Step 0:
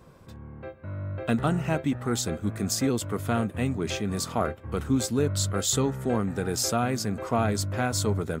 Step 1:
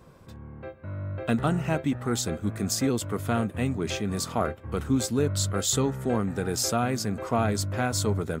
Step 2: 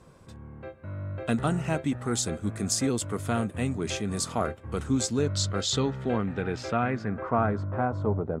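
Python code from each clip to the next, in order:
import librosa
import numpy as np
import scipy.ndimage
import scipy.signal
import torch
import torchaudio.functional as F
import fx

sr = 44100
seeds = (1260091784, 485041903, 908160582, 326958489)

y1 = x
y2 = fx.filter_sweep_lowpass(y1, sr, from_hz=9300.0, to_hz=790.0, start_s=4.7, end_s=8.22, q=1.6)
y2 = y2 * 10.0 ** (-1.5 / 20.0)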